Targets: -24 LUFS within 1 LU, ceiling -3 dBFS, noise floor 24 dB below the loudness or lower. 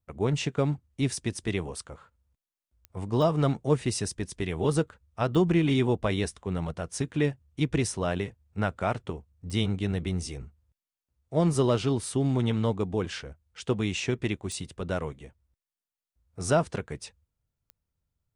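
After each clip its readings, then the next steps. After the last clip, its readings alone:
clicks found 6; loudness -28.5 LUFS; peak level -12.0 dBFS; loudness target -24.0 LUFS
-> de-click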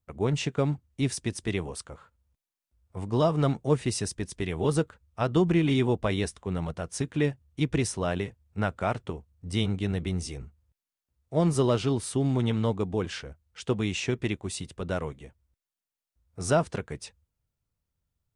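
clicks found 0; loudness -28.5 LUFS; peak level -12.0 dBFS; loudness target -24.0 LUFS
-> trim +4.5 dB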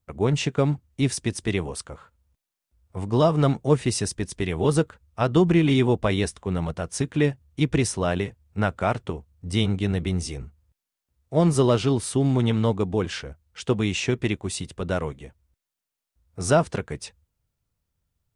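loudness -24.0 LUFS; peak level -7.5 dBFS; noise floor -86 dBFS

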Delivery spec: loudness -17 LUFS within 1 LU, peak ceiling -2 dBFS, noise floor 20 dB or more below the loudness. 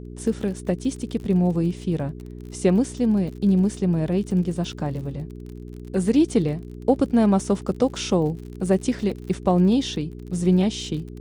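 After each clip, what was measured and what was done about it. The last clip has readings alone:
tick rate 46 per s; hum 60 Hz; highest harmonic 420 Hz; hum level -34 dBFS; loudness -23.0 LUFS; peak level -6.0 dBFS; loudness target -17.0 LUFS
-> de-click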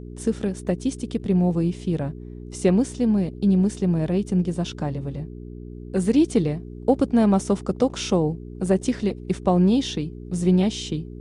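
tick rate 0.27 per s; hum 60 Hz; highest harmonic 420 Hz; hum level -34 dBFS
-> de-hum 60 Hz, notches 7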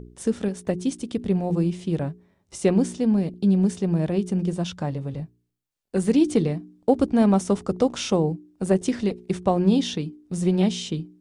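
hum not found; loudness -24.0 LUFS; peak level -6.5 dBFS; loudness target -17.0 LUFS
-> trim +7 dB; peak limiter -2 dBFS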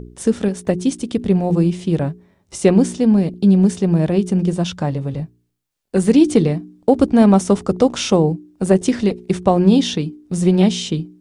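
loudness -17.0 LUFS; peak level -2.0 dBFS; noise floor -63 dBFS

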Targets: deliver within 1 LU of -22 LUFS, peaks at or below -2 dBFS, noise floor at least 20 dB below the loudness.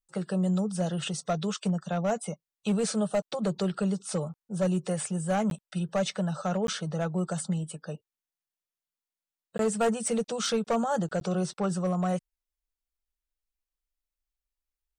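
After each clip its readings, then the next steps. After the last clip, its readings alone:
clipped samples 0.7%; clipping level -20.5 dBFS; dropouts 4; longest dropout 12 ms; loudness -30.0 LUFS; peak level -20.5 dBFS; loudness target -22.0 LUFS
-> clip repair -20.5 dBFS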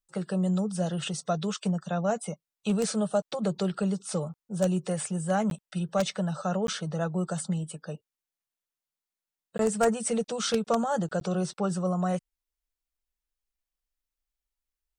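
clipped samples 0.0%; dropouts 4; longest dropout 12 ms
-> interpolate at 5.50/6.67/9.58/11.20 s, 12 ms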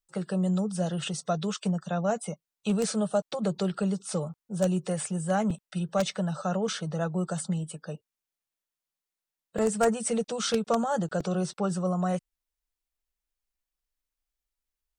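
dropouts 0; loudness -29.5 LUFS; peak level -11.5 dBFS; loudness target -22.0 LUFS
-> trim +7.5 dB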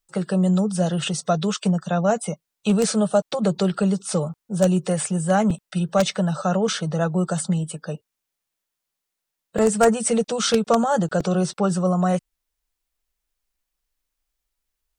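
loudness -22.0 LUFS; peak level -4.0 dBFS; noise floor -83 dBFS

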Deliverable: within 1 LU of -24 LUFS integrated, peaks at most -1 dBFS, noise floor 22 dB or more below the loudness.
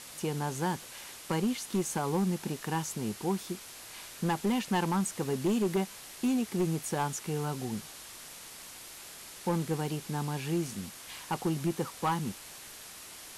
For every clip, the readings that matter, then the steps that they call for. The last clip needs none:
clipped samples 1.0%; clipping level -23.0 dBFS; noise floor -48 dBFS; noise floor target -55 dBFS; loudness -33.0 LUFS; peak level -23.0 dBFS; loudness target -24.0 LUFS
-> clip repair -23 dBFS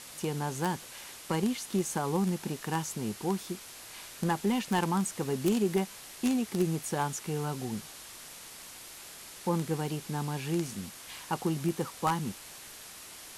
clipped samples 0.0%; noise floor -48 dBFS; noise floor target -54 dBFS
-> noise print and reduce 6 dB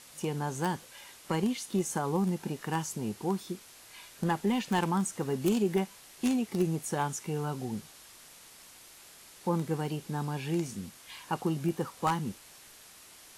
noise floor -54 dBFS; noise floor target -55 dBFS
-> noise print and reduce 6 dB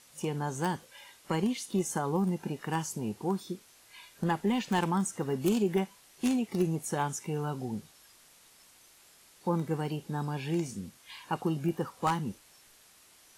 noise floor -60 dBFS; loudness -32.5 LUFS; peak level -14.5 dBFS; loudness target -24.0 LUFS
-> trim +8.5 dB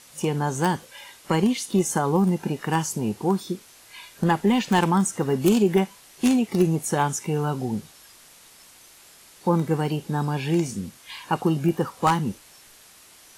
loudness -24.0 LUFS; peak level -6.0 dBFS; noise floor -51 dBFS

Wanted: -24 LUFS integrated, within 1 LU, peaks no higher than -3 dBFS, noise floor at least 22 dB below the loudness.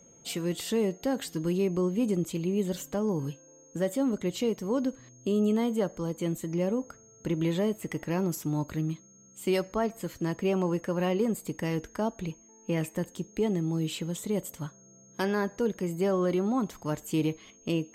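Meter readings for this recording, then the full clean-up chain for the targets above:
steady tone 6.5 kHz; tone level -56 dBFS; loudness -30.5 LUFS; peak level -16.5 dBFS; loudness target -24.0 LUFS
-> band-stop 6.5 kHz, Q 30; trim +6.5 dB

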